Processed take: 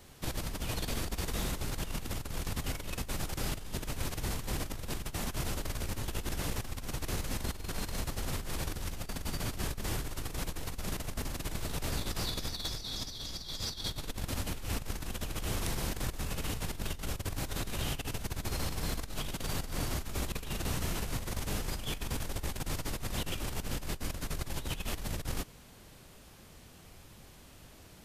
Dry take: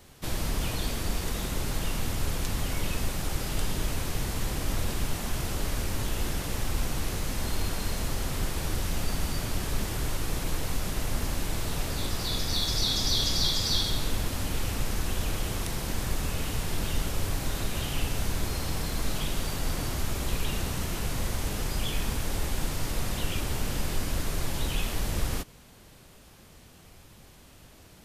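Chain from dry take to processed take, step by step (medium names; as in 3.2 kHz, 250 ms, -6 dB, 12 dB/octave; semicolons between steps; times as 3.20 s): compressor with a negative ratio -30 dBFS, ratio -0.5; trim -4.5 dB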